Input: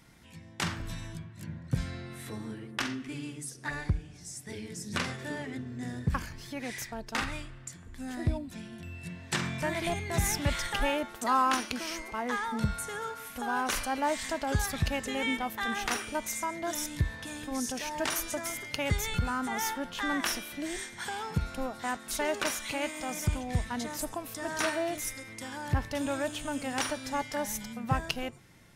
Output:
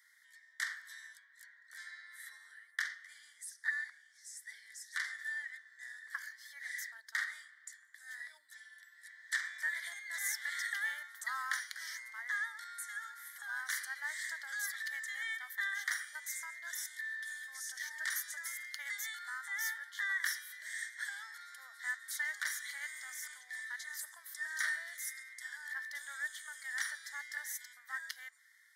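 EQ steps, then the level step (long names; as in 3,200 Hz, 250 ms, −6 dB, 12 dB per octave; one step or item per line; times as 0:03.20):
four-pole ladder high-pass 1,700 Hz, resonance 75%
Butterworth band-reject 2,600 Hz, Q 2
high-shelf EQ 8,600 Hz +7.5 dB
+2.0 dB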